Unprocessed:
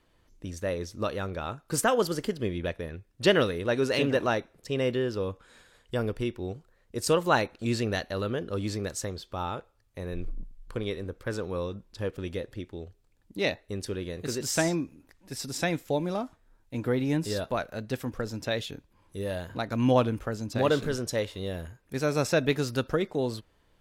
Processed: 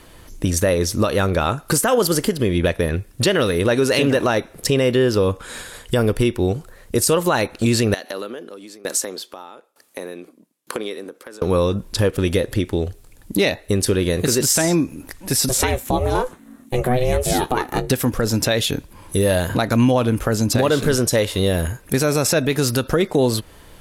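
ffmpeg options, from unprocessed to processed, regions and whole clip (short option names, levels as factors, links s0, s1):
-filter_complex "[0:a]asettb=1/sr,asplit=3[s0][s1][s2];[s0]atrim=end=7.944[s3];[s1]atrim=start=7.94:end=11.42,asetpts=PTS-STARTPTS,afade=t=in:d=0.004:c=qsin,afade=t=out:st=3.476:d=0.004:c=qsin,highpass=f=240:w=0.5412,highpass=f=240:w=1.3066,acompressor=threshold=0.00891:ratio=4:attack=3.2:release=140:knee=1:detection=peak,aeval=exprs='val(0)*pow(10,-22*if(lt(mod(1.1*n/s,1),2*abs(1.1)/1000),1-mod(1.1*n/s,1)/(2*abs(1.1)/1000),(mod(1.1*n/s,1)-2*abs(1.1)/1000)/(1-2*abs(1.1)/1000))/20)':c=same[s4];[s2]atrim=start=11.416[s5];[s3][s4]acrossfade=d=0.004:c1=hsin:c2=qsin[s6];[s6][s5]acrossfade=d=0.004:c1=qsin:c2=hsin,asettb=1/sr,asplit=3[s7][s8][s9];[s7]atrim=end=15.494[s10];[s8]atrim=start=15.49:end=17.9,asetpts=PTS-STARTPTS,afade=t=in:d=0.004:c=qsin,afade=t=out:st=2.406:d=0.004:c=qsin,equalizer=f=4900:w=4.9:g=-8,asplit=2[s11][s12];[s12]adelay=16,volume=0.2[s13];[s11][s13]amix=inputs=2:normalize=0,atrim=end_sample=106281,aeval=exprs='val(0)*sin(2*PI*250*n/s)':c=same[s14];[s9]atrim=start=17.896[s15];[s10][s14]acrossfade=d=0.004:c1=hsin:c2=qsin[s16];[s16][s15]acrossfade=d=0.004:c1=qsin:c2=hsin,acompressor=threshold=0.0126:ratio=2.5,equalizer=f=11000:w=0.9:g=10.5,alimiter=level_in=23.7:limit=0.891:release=50:level=0:latency=1,volume=0.473"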